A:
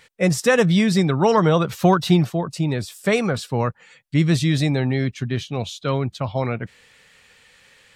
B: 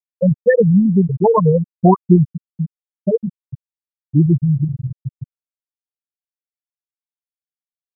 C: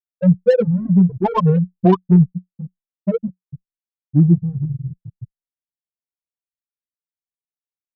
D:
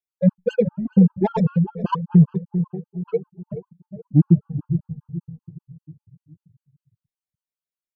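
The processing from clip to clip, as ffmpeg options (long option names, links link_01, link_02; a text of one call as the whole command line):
ffmpeg -i in.wav -af "afftfilt=real='re*gte(hypot(re,im),1)':imag='im*gte(hypot(re,im),1)':win_size=1024:overlap=0.75,volume=6dB" out.wav
ffmpeg -i in.wav -filter_complex "[0:a]adynamicsmooth=sensitivity=0.5:basefreq=850,adynamicequalizer=threshold=0.0562:dfrequency=180:dqfactor=7.5:tfrequency=180:tqfactor=7.5:attack=5:release=100:ratio=0.375:range=2.5:mode=boostabove:tftype=bell,asplit=2[link_01][link_02];[link_02]adelay=5.3,afreqshift=1.5[link_03];[link_01][link_03]amix=inputs=2:normalize=1" out.wav
ffmpeg -i in.wav -filter_complex "[0:a]asplit=2[link_01][link_02];[link_02]adelay=425,lowpass=frequency=840:poles=1,volume=-11dB,asplit=2[link_03][link_04];[link_04]adelay=425,lowpass=frequency=840:poles=1,volume=0.49,asplit=2[link_05][link_06];[link_06]adelay=425,lowpass=frequency=840:poles=1,volume=0.49,asplit=2[link_07][link_08];[link_08]adelay=425,lowpass=frequency=840:poles=1,volume=0.49,asplit=2[link_09][link_10];[link_10]adelay=425,lowpass=frequency=840:poles=1,volume=0.49[link_11];[link_03][link_05][link_07][link_09][link_11]amix=inputs=5:normalize=0[link_12];[link_01][link_12]amix=inputs=2:normalize=0,afftfilt=real='re*gt(sin(2*PI*5.1*pts/sr)*(1-2*mod(floor(b*sr/1024/830),2)),0)':imag='im*gt(sin(2*PI*5.1*pts/sr)*(1-2*mod(floor(b*sr/1024/830),2)),0)':win_size=1024:overlap=0.75" out.wav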